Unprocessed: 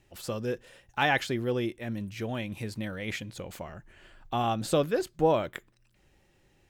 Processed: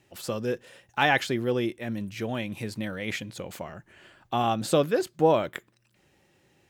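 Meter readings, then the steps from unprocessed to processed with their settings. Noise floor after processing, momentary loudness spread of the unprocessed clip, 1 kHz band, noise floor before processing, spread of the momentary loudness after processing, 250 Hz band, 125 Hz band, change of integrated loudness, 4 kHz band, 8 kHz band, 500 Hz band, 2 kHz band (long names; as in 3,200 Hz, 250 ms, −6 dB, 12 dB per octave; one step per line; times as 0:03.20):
−67 dBFS, 15 LU, +3.0 dB, −66 dBFS, 15 LU, +3.0 dB, +1.0 dB, +3.0 dB, +3.0 dB, +3.0 dB, +3.0 dB, +3.0 dB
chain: high-pass filter 110 Hz 12 dB per octave
level +3 dB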